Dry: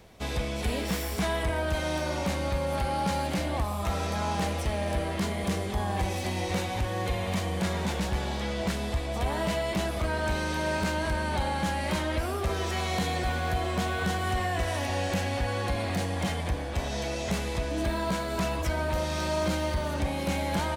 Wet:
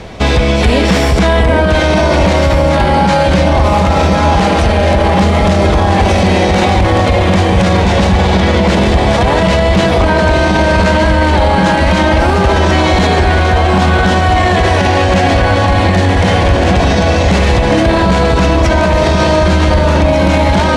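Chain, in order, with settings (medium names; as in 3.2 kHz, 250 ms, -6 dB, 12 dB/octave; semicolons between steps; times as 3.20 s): distance through air 84 m; echo whose repeats swap between lows and highs 749 ms, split 980 Hz, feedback 72%, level -2.5 dB; loudness maximiser +26 dB; trim -1 dB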